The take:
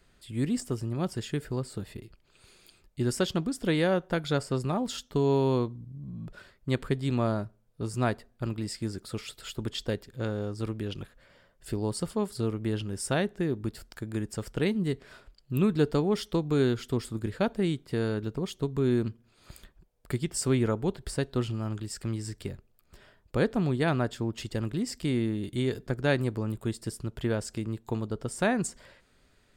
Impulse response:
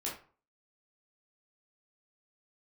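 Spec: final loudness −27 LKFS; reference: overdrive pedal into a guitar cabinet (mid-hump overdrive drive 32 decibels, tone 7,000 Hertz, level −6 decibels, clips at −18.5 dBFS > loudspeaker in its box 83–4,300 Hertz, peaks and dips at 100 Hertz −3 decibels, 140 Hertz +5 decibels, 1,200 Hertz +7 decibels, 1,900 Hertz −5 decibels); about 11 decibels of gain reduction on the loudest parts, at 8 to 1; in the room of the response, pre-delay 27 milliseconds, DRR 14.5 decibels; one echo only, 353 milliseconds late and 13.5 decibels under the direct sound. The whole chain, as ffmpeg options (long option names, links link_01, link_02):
-filter_complex "[0:a]acompressor=threshold=-31dB:ratio=8,aecho=1:1:353:0.211,asplit=2[link_01][link_02];[1:a]atrim=start_sample=2205,adelay=27[link_03];[link_02][link_03]afir=irnorm=-1:irlink=0,volume=-16.5dB[link_04];[link_01][link_04]amix=inputs=2:normalize=0,asplit=2[link_05][link_06];[link_06]highpass=frequency=720:poles=1,volume=32dB,asoftclip=type=tanh:threshold=-18.5dB[link_07];[link_05][link_07]amix=inputs=2:normalize=0,lowpass=frequency=7000:poles=1,volume=-6dB,highpass=83,equalizer=frequency=100:width_type=q:width=4:gain=-3,equalizer=frequency=140:width_type=q:width=4:gain=5,equalizer=frequency=1200:width_type=q:width=4:gain=7,equalizer=frequency=1900:width_type=q:width=4:gain=-5,lowpass=frequency=4300:width=0.5412,lowpass=frequency=4300:width=1.3066,volume=0.5dB"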